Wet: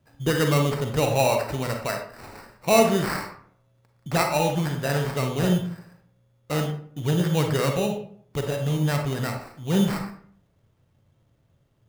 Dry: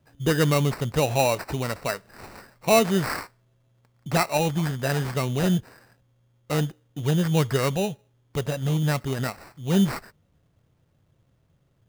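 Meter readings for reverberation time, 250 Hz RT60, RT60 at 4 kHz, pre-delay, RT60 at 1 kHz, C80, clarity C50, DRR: 0.55 s, 0.70 s, 0.35 s, 35 ms, 0.55 s, 10.0 dB, 5.5 dB, 3.5 dB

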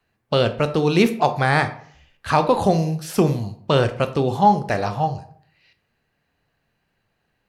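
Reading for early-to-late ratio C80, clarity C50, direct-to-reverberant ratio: 16.5 dB, 13.5 dB, 9.5 dB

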